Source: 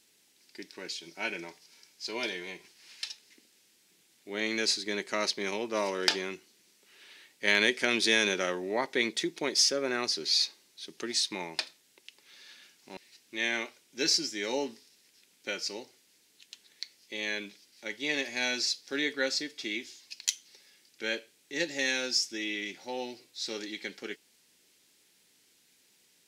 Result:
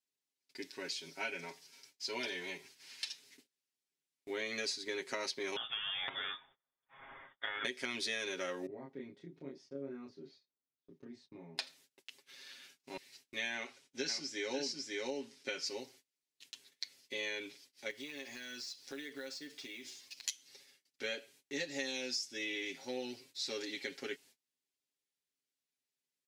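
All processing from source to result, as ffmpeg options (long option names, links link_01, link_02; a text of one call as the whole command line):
ffmpeg -i in.wav -filter_complex "[0:a]asettb=1/sr,asplit=3[link_01][link_02][link_03];[link_01]atrim=end=5.564[link_04];[link_02]atrim=start=5.56:end=7.65,asetpts=PTS-STARTPTS,afade=type=in:duration=0.004:curve=qsin,afade=type=out:start_time=2.086:duration=0.004:curve=qsin,aemphasis=mode=production:type=75fm,acompressor=threshold=-28dB:ratio=10:attack=3.2:release=140:knee=1:detection=peak,lowpass=frequency=3200:width_type=q:width=0.5098,lowpass=frequency=3200:width_type=q:width=0.6013,lowpass=frequency=3200:width_type=q:width=0.9,lowpass=frequency=3200:width_type=q:width=2.563,afreqshift=-3800[link_05];[link_03]atrim=start=7.646[link_06];[link_04][link_05]acrossfade=duration=0.004:curve1=hsin:curve2=qsin[link_07];[link_07][link_06]acrossfade=duration=0.004:curve1=qsin:curve2=hsin,asettb=1/sr,asplit=3[link_08][link_09][link_10];[link_08]atrim=end=8.664[link_11];[link_09]atrim=start=8.66:end=11.58,asetpts=PTS-STARTPTS,afade=type=in:duration=0.004:curve=qsin,afade=type=out:start_time=2.916:duration=0.004:curve=qsin,acompressor=threshold=-46dB:ratio=1.5:attack=3.2:release=140:knee=1:detection=peak,bandpass=frequency=130:width_type=q:width=0.97,asplit=2[link_12][link_13];[link_13]adelay=29,volume=-2dB[link_14];[link_12][link_14]amix=inputs=2:normalize=0,atrim=end_sample=128772[link_15];[link_10]atrim=start=11.576[link_16];[link_11][link_15]acrossfade=duration=0.004:curve1=hsin:curve2=qsin[link_17];[link_17][link_16]acrossfade=duration=0.004:curve1=qsin:curve2=hsin,asettb=1/sr,asplit=3[link_18][link_19][link_20];[link_18]atrim=end=13.544[link_21];[link_19]atrim=start=13.54:end=15.66,asetpts=PTS-STARTPTS,afade=type=in:duration=0.004:curve=qsin,afade=type=out:start_time=2.116:duration=0.004:curve=qsin,lowpass=8800,aecho=1:1:547:0.668,atrim=end_sample=93492[link_22];[link_20]atrim=start=15.656[link_23];[link_21][link_22]acrossfade=duration=0.004:curve1=hsin:curve2=qsin[link_24];[link_24][link_23]acrossfade=duration=0.004:curve1=qsin:curve2=hsin,asettb=1/sr,asplit=3[link_25][link_26][link_27];[link_25]atrim=end=17.904[link_28];[link_26]atrim=start=17.9:end=20.26,asetpts=PTS-STARTPTS,afade=type=in:duration=0.004:curve=qsin,afade=type=out:start_time=2.356:duration=0.004:curve=qsin,acrusher=bits=4:mode=log:mix=0:aa=0.000001,acompressor=threshold=-43dB:ratio=5:attack=3.2:release=140:knee=1:detection=peak[link_29];[link_27]atrim=start=20.256[link_30];[link_28][link_29]acrossfade=duration=0.004:curve1=hsin:curve2=qsin[link_31];[link_31][link_30]acrossfade=duration=0.004:curve1=qsin:curve2=hsin,agate=range=-27dB:threshold=-59dB:ratio=16:detection=peak,aecho=1:1:7.4:0.9,acompressor=threshold=-32dB:ratio=6,volume=-3.5dB" out.wav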